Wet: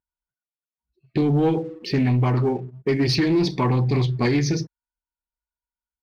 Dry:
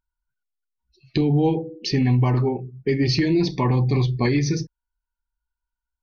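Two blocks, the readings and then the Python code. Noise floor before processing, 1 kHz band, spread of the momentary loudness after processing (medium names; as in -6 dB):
under -85 dBFS, +1.0 dB, 8 LU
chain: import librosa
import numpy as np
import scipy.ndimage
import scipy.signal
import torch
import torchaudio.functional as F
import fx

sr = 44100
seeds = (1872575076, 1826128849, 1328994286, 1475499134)

y = fx.highpass(x, sr, hz=110.0, slope=6)
y = fx.env_lowpass(y, sr, base_hz=1200.0, full_db=-16.5)
y = fx.leveller(y, sr, passes=1)
y = fx.doppler_dist(y, sr, depth_ms=0.13)
y = y * librosa.db_to_amplitude(-1.5)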